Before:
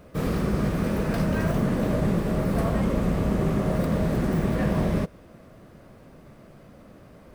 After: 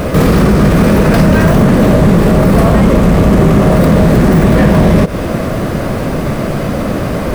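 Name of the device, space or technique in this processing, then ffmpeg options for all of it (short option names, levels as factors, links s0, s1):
loud club master: -af "acompressor=threshold=0.0316:ratio=2,asoftclip=type=hard:threshold=0.0631,alimiter=level_in=53.1:limit=0.891:release=50:level=0:latency=1,volume=0.891"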